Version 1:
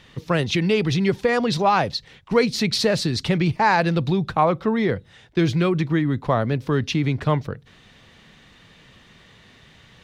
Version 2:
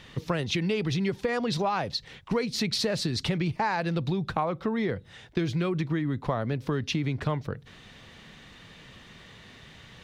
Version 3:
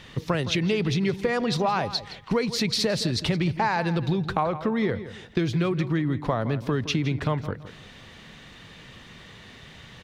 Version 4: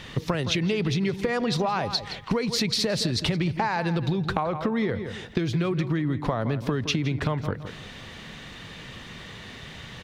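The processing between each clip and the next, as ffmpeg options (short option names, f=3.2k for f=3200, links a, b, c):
-af "acompressor=threshold=-27dB:ratio=4,volume=1dB"
-filter_complex "[0:a]asplit=2[a][b];[b]adelay=166,lowpass=f=4.4k:p=1,volume=-13dB,asplit=2[c][d];[d]adelay=166,lowpass=f=4.4k:p=1,volume=0.3,asplit=2[e][f];[f]adelay=166,lowpass=f=4.4k:p=1,volume=0.3[g];[a][c][e][g]amix=inputs=4:normalize=0,volume=3dB"
-af "acompressor=threshold=-27dB:ratio=6,volume=5dB"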